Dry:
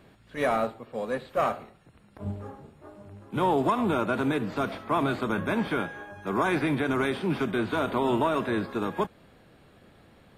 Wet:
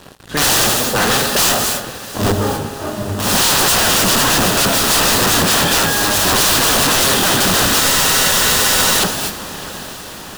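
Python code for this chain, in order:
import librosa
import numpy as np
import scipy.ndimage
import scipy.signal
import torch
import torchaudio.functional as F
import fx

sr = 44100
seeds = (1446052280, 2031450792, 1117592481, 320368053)

p1 = (np.mod(10.0 ** (27.5 / 20.0) * x + 1.0, 2.0) - 1.0) / 10.0 ** (27.5 / 20.0)
p2 = fx.high_shelf(p1, sr, hz=4000.0, db=8.0)
p3 = fx.clip_asym(p2, sr, top_db=-24.5, bottom_db=-22.0)
p4 = p2 + (p3 * librosa.db_to_amplitude(-6.5))
p5 = fx.echo_pitch(p4, sr, ms=108, semitones=1, count=2, db_per_echo=-6.0)
p6 = fx.rev_gated(p5, sr, seeds[0], gate_ms=280, shape='rising', drr_db=11.0)
p7 = fx.leveller(p6, sr, passes=5)
p8 = fx.peak_eq(p7, sr, hz=2200.0, db=-9.5, octaves=0.21)
p9 = fx.echo_diffused(p8, sr, ms=789, feedback_pct=58, wet_db=-16)
p10 = fx.spec_freeze(p9, sr, seeds[1], at_s=7.83, hold_s=1.16)
y = p10 * librosa.db_to_amplitude(1.0)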